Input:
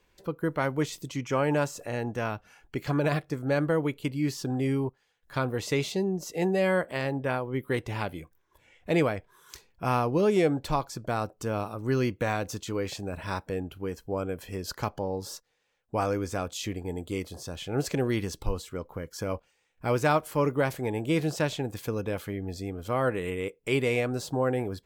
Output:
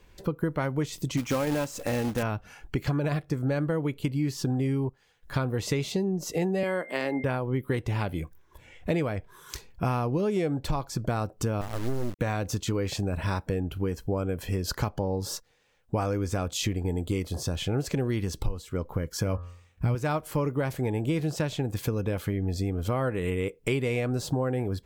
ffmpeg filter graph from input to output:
ffmpeg -i in.wav -filter_complex "[0:a]asettb=1/sr,asplit=3[link_01][link_02][link_03];[link_01]atrim=end=1.174[link_04];[link_02]atrim=start=1.17:end=2.23,asetpts=PTS-STARTPTS,afade=type=in:duration=0.004:curve=qsin,afade=type=out:start_time=1.056:duration=0.004:curve=qsin,aecho=1:1:3.8:0.43,atrim=end_sample=46746,acrusher=bits=2:mode=log:mix=0:aa=0.000001[link_05];[link_03]atrim=start=2.226[link_06];[link_04][link_05]acrossfade=duration=0.004:curve1=hsin:curve2=qsin[link_07];[link_07][link_06]acrossfade=duration=0.004:curve1=qsin:curve2=hsin,asettb=1/sr,asplit=3[link_08][link_09][link_10];[link_08]atrim=end=6.634[link_11];[link_09]atrim=start=6.63:end=7.24,asetpts=PTS-STARTPTS,afade=type=in:duration=0.004:curve=qsin,afade=type=out:start_time=0.606:duration=0.004:curve=qsin,highpass=frequency=220:width=0.5412,highpass=frequency=220:width=1.3066,aeval=exprs='val(0)+0.00708*sin(2*PI*2100*n/s)':channel_layout=same[link_12];[link_10]atrim=start=7.236[link_13];[link_11][link_12]acrossfade=duration=0.004:curve1=hsin:curve2=qsin[link_14];[link_14][link_13]acrossfade=duration=0.004:curve1=qsin:curve2=hsin,asettb=1/sr,asplit=3[link_15][link_16][link_17];[link_15]atrim=end=11.614[link_18];[link_16]atrim=start=11.61:end=12.19,asetpts=PTS-STARTPTS,afade=type=in:duration=0.004:curve=qsin,afade=type=out:start_time=0.576:duration=0.004:curve=qsin,volume=22dB,asoftclip=hard,volume=-22dB,lowpass=1200,acrusher=bits=4:dc=4:mix=0:aa=0.000001[link_19];[link_17]atrim=start=12.186[link_20];[link_18][link_19]acrossfade=duration=0.004:curve1=hsin:curve2=qsin[link_21];[link_21][link_20]acrossfade=duration=0.004:curve1=qsin:curve2=hsin,asettb=1/sr,asplit=3[link_22][link_23][link_24];[link_22]atrim=end=19.144[link_25];[link_23]atrim=start=19.14:end=19.95,asetpts=PTS-STARTPTS,afade=type=in:duration=0.004:curve=qsin,afade=type=out:start_time=0.806:duration=0.004:curve=qsin,highpass=54,asubboost=boost=11:cutoff=220,bandreject=frequency=87.74:width_type=h:width=4,bandreject=frequency=175.48:width_type=h:width=4,bandreject=frequency=263.22:width_type=h:width=4,bandreject=frequency=350.96:width_type=h:width=4,bandreject=frequency=438.7:width_type=h:width=4,bandreject=frequency=526.44:width_type=h:width=4,bandreject=frequency=614.18:width_type=h:width=4,bandreject=frequency=701.92:width_type=h:width=4,bandreject=frequency=789.66:width_type=h:width=4,bandreject=frequency=877.4:width_type=h:width=4,bandreject=frequency=965.14:width_type=h:width=4,bandreject=frequency=1052.88:width_type=h:width=4,bandreject=frequency=1140.62:width_type=h:width=4,bandreject=frequency=1228.36:width_type=h:width=4,bandreject=frequency=1316.1:width_type=h:width=4,bandreject=frequency=1403.84:width_type=h:width=4,bandreject=frequency=1491.58:width_type=h:width=4,bandreject=frequency=1579.32:width_type=h:width=4,bandreject=frequency=1667.06:width_type=h:width=4,bandreject=frequency=1754.8:width_type=h:width=4,bandreject=frequency=1842.54:width_type=h:width=4[link_26];[link_24]atrim=start=19.946[link_27];[link_25][link_26]acrossfade=duration=0.004:curve1=hsin:curve2=qsin[link_28];[link_28][link_27]acrossfade=duration=0.004:curve1=qsin:curve2=hsin,lowshelf=frequency=190:gain=9,acompressor=threshold=-31dB:ratio=6,volume=6.5dB" out.wav

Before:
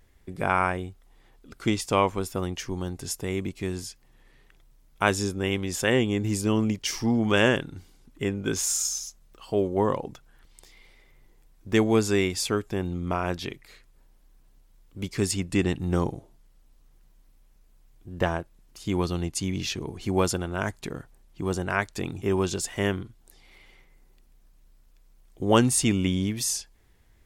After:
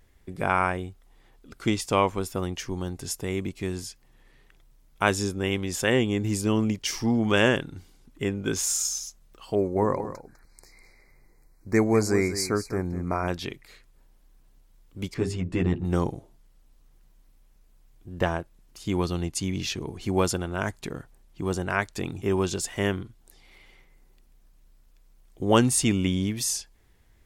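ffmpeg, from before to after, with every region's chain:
ffmpeg -i in.wav -filter_complex "[0:a]asettb=1/sr,asplit=3[link_01][link_02][link_03];[link_01]atrim=end=9.554[link_04];[link_02]atrim=start=9.55:end=13.28,asetpts=PTS-STARTPTS,afade=type=in:duration=0.004:curve=qsin,afade=type=out:start_time=3.726:duration=0.004:curve=qsin,asuperstop=centerf=3100:order=20:qfactor=2.1,aecho=1:1:201:0.251,atrim=end_sample=164493[link_05];[link_03]atrim=start=13.276[link_06];[link_04][link_05]acrossfade=duration=0.004:curve1=hsin:curve2=qsin[link_07];[link_07][link_06]acrossfade=duration=0.004:curve1=qsin:curve2=hsin,asettb=1/sr,asplit=3[link_08][link_09][link_10];[link_08]atrim=end=15.144[link_11];[link_09]atrim=start=15.14:end=15.85,asetpts=PTS-STARTPTS,afade=type=in:duration=0.004:curve=qsin,afade=type=out:start_time=0.706:duration=0.004:curve=qsin,lowpass=frequency=1200:poles=1,bandreject=frequency=50:width_type=h:width=6,bandreject=frequency=100:width_type=h:width=6,bandreject=frequency=150:width_type=h:width=6,bandreject=frequency=200:width_type=h:width=6,bandreject=frequency=250:width_type=h:width=6,bandreject=frequency=300:width_type=h:width=6,bandreject=frequency=350:width_type=h:width=6,bandreject=frequency=400:width_type=h:width=6,asplit=2[link_12][link_13];[link_13]adelay=12,volume=-3dB[link_14];[link_12][link_14]amix=inputs=2:normalize=0,atrim=end_sample=31311[link_15];[link_10]atrim=start=15.846[link_16];[link_11][link_15]acrossfade=duration=0.004:curve1=hsin:curve2=qsin[link_17];[link_17][link_16]acrossfade=duration=0.004:curve1=qsin:curve2=hsin" out.wav

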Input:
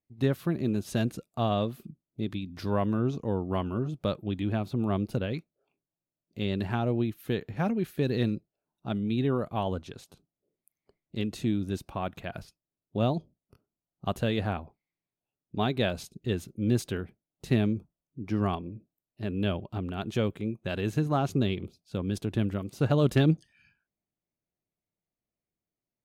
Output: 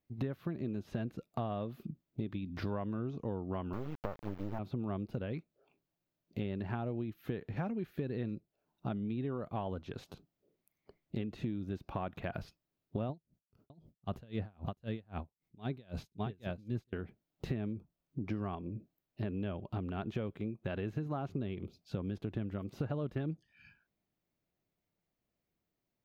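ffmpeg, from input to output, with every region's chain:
ffmpeg -i in.wav -filter_complex "[0:a]asettb=1/sr,asplit=3[link_01][link_02][link_03];[link_01]atrim=end=3.734[link_04];[link_02]atrim=start=3.73:end=4.59,asetpts=PTS-STARTPTS,afade=type=in:duration=0.004:curve=qsin,afade=type=out:start_time=0.856:duration=0.004:curve=qsin,lowpass=frequency=1300:width=0.5412,lowpass=frequency=1300:width=1.3066,equalizer=frequency=860:width_type=o:width=0.34:gain=12,acrusher=bits=4:dc=4:mix=0:aa=0.000001[link_05];[link_03]atrim=start=4.586[link_06];[link_04][link_05]acrossfade=duration=0.004:curve1=hsin:curve2=qsin[link_07];[link_07][link_06]acrossfade=duration=0.004:curve1=qsin:curve2=hsin,asettb=1/sr,asplit=3[link_08][link_09][link_10];[link_08]atrim=end=13.094[link_11];[link_09]atrim=start=13.09:end=16.93,asetpts=PTS-STARTPTS,afade=type=in:duration=0.004:curve=qsin,afade=type=out:start_time=3.836:duration=0.004:curve=qsin,bass=frequency=250:gain=5,treble=frequency=4000:gain=4,aecho=1:1:609:0.501,atrim=end_sample=169344,aeval=exprs='val(0)*pow(10,-37*(0.5-0.5*cos(2*PI*3.8*n/s))/20)':channel_layout=same[link_12];[link_10]atrim=start=16.926[link_13];[link_11][link_12]acrossfade=duration=0.004:curve1=hsin:curve2=qsin[link_14];[link_14][link_13]acrossfade=duration=0.004:curve1=qsin:curve2=hsin,acrossover=split=2700[link_15][link_16];[link_16]acompressor=threshold=-54dB:ratio=4:attack=1:release=60[link_17];[link_15][link_17]amix=inputs=2:normalize=0,equalizer=frequency=9200:width_type=o:width=0.97:gain=-13.5,acompressor=threshold=-40dB:ratio=8,volume=5.5dB" out.wav

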